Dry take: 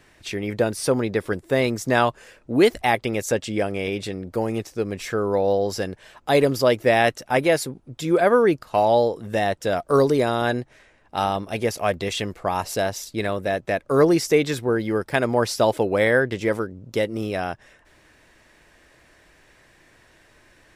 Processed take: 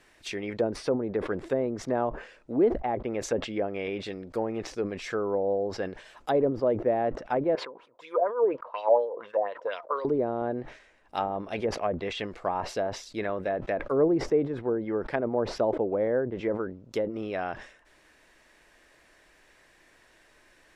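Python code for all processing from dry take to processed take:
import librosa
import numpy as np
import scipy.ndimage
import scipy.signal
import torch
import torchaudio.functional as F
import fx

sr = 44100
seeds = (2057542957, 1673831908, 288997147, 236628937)

y = fx.chain(x, sr, fx.wah_lfo(hz=4.2, low_hz=620.0, high_hz=3400.0, q=3.7),
    fx.small_body(hz=(500.0, 980.0), ring_ms=20, db=15), at=(7.55, 10.05))
y = fx.env_lowpass_down(y, sr, base_hz=650.0, full_db=-17.5)
y = fx.peak_eq(y, sr, hz=100.0, db=-9.5, octaves=2.0)
y = fx.sustainer(y, sr, db_per_s=110.0)
y = y * 10.0 ** (-4.0 / 20.0)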